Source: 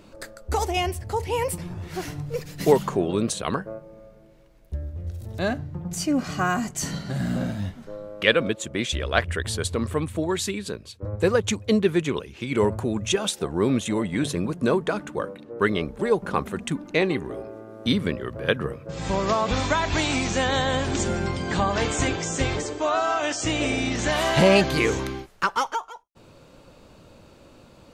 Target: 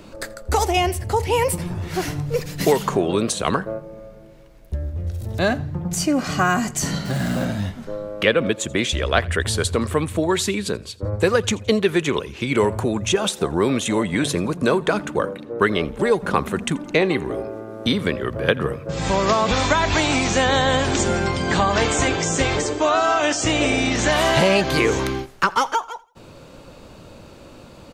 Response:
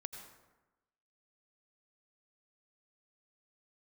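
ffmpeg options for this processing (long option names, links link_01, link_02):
-filter_complex "[0:a]acrossover=split=420|1400[link_01][link_02][link_03];[link_01]acompressor=threshold=-29dB:ratio=4[link_04];[link_02]acompressor=threshold=-26dB:ratio=4[link_05];[link_03]acompressor=threshold=-29dB:ratio=4[link_06];[link_04][link_05][link_06]amix=inputs=3:normalize=0,asplit=3[link_07][link_08][link_09];[link_07]afade=type=out:start_time=7.04:duration=0.02[link_10];[link_08]aeval=exprs='val(0)*gte(abs(val(0)),0.0112)':channel_layout=same,afade=type=in:start_time=7.04:duration=0.02,afade=type=out:start_time=7.44:duration=0.02[link_11];[link_09]afade=type=in:start_time=7.44:duration=0.02[link_12];[link_10][link_11][link_12]amix=inputs=3:normalize=0,asplit=2[link_13][link_14];[link_14]aecho=0:1:84|168|252:0.0668|0.0267|0.0107[link_15];[link_13][link_15]amix=inputs=2:normalize=0,volume=7.5dB"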